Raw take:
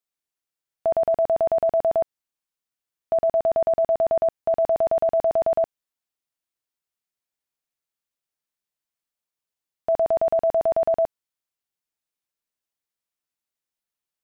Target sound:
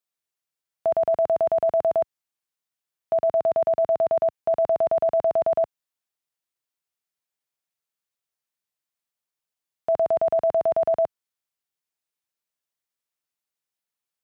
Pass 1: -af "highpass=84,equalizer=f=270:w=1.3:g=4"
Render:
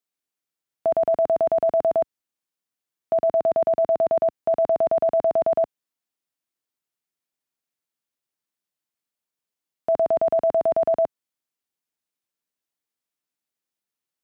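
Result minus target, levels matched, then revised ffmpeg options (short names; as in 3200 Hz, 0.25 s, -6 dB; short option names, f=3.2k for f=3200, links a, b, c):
250 Hz band +5.0 dB
-af "highpass=84,equalizer=f=270:w=1.3:g=-3.5"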